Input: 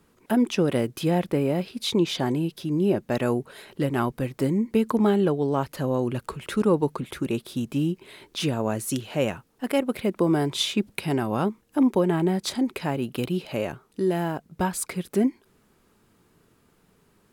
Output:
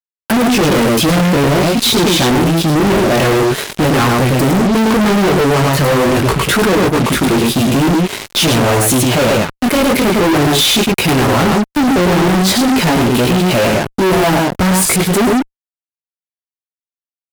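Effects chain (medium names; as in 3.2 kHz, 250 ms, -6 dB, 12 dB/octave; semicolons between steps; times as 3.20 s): delay 108 ms -5 dB; chorus 0.45 Hz, delay 16 ms, depth 6.6 ms; fuzz box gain 45 dB, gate -46 dBFS; trim +3 dB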